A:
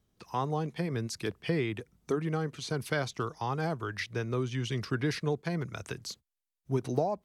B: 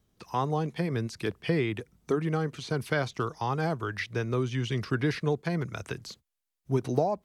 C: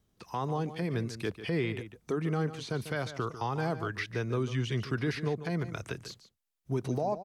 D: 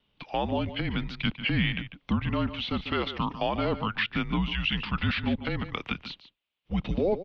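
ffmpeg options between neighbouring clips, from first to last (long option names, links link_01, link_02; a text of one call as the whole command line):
ffmpeg -i in.wav -filter_complex "[0:a]acrossover=split=3600[link_01][link_02];[link_02]acompressor=threshold=-47dB:ratio=4:attack=1:release=60[link_03];[link_01][link_03]amix=inputs=2:normalize=0,volume=3dB" out.wav
ffmpeg -i in.wav -filter_complex "[0:a]alimiter=limit=-19.5dB:level=0:latency=1,asplit=2[link_01][link_02];[link_02]adelay=145.8,volume=-12dB,highshelf=frequency=4000:gain=-3.28[link_03];[link_01][link_03]amix=inputs=2:normalize=0,volume=-2dB" out.wav
ffmpeg -i in.wav -af "highpass=frequency=230:width_type=q:width=0.5412,highpass=frequency=230:width_type=q:width=1.307,lowpass=frequency=3400:width_type=q:width=0.5176,lowpass=frequency=3400:width_type=q:width=0.7071,lowpass=frequency=3400:width_type=q:width=1.932,afreqshift=-200,aexciter=amount=4.4:drive=4.2:freq=2500,volume=6dB" out.wav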